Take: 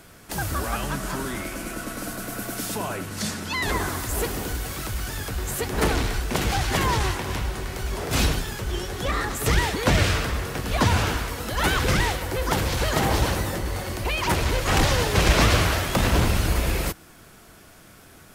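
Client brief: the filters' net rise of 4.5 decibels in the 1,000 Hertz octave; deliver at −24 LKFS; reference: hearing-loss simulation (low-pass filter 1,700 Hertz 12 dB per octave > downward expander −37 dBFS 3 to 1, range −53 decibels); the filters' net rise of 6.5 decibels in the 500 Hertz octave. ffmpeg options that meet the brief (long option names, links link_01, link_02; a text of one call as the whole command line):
ffmpeg -i in.wav -af "lowpass=1700,equalizer=frequency=500:width_type=o:gain=7,equalizer=frequency=1000:width_type=o:gain=4,agate=range=-53dB:threshold=-37dB:ratio=3,volume=-0.5dB" out.wav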